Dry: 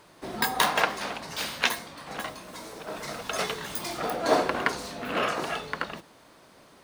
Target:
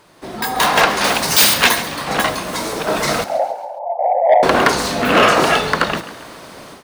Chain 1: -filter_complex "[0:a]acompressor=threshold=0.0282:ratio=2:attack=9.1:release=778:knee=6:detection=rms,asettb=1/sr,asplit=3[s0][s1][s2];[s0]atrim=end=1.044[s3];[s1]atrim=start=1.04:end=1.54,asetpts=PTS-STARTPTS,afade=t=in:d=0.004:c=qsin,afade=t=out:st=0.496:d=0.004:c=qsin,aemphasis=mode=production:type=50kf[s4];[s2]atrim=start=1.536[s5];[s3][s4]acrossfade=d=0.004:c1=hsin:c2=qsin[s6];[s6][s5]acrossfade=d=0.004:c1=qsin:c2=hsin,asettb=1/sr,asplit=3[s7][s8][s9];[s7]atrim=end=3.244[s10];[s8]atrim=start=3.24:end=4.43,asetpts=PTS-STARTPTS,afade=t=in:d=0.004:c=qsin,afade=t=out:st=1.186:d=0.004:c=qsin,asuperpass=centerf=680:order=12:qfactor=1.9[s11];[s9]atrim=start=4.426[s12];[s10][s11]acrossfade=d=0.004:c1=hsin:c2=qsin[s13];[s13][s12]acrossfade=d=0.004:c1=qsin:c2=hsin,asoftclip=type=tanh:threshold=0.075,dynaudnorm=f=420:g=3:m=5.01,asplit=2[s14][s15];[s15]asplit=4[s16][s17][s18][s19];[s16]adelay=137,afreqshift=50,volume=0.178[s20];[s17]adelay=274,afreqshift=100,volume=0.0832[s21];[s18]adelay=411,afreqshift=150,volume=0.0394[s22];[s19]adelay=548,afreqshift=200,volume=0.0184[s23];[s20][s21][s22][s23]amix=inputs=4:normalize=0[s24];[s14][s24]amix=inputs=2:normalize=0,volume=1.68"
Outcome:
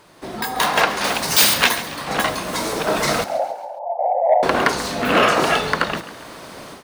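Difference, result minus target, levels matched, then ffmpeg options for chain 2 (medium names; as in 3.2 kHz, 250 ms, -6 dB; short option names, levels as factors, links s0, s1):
compression: peak gain reduction +6 dB
-filter_complex "[0:a]acompressor=threshold=0.112:ratio=2:attack=9.1:release=778:knee=6:detection=rms,asettb=1/sr,asplit=3[s0][s1][s2];[s0]atrim=end=1.044[s3];[s1]atrim=start=1.04:end=1.54,asetpts=PTS-STARTPTS,afade=t=in:d=0.004:c=qsin,afade=t=out:st=0.496:d=0.004:c=qsin,aemphasis=mode=production:type=50kf[s4];[s2]atrim=start=1.536[s5];[s3][s4]acrossfade=d=0.004:c1=hsin:c2=qsin[s6];[s6][s5]acrossfade=d=0.004:c1=qsin:c2=hsin,asettb=1/sr,asplit=3[s7][s8][s9];[s7]atrim=end=3.244[s10];[s8]atrim=start=3.24:end=4.43,asetpts=PTS-STARTPTS,afade=t=in:d=0.004:c=qsin,afade=t=out:st=1.186:d=0.004:c=qsin,asuperpass=centerf=680:order=12:qfactor=1.9[s11];[s9]atrim=start=4.426[s12];[s10][s11]acrossfade=d=0.004:c1=hsin:c2=qsin[s13];[s13][s12]acrossfade=d=0.004:c1=qsin:c2=hsin,asoftclip=type=tanh:threshold=0.075,dynaudnorm=f=420:g=3:m=5.01,asplit=2[s14][s15];[s15]asplit=4[s16][s17][s18][s19];[s16]adelay=137,afreqshift=50,volume=0.178[s20];[s17]adelay=274,afreqshift=100,volume=0.0832[s21];[s18]adelay=411,afreqshift=150,volume=0.0394[s22];[s19]adelay=548,afreqshift=200,volume=0.0184[s23];[s20][s21][s22][s23]amix=inputs=4:normalize=0[s24];[s14][s24]amix=inputs=2:normalize=0,volume=1.68"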